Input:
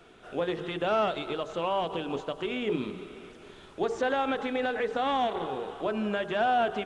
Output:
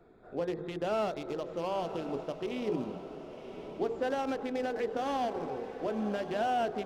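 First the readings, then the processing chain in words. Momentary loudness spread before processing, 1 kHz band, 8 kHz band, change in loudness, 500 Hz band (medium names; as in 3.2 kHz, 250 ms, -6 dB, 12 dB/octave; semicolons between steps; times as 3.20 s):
11 LU, -5.5 dB, no reading, -4.5 dB, -3.5 dB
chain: local Wiener filter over 15 samples; peaking EQ 1.3 kHz -5.5 dB 1.2 oct; echo that smears into a reverb 1038 ms, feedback 53%, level -11 dB; trim -2.5 dB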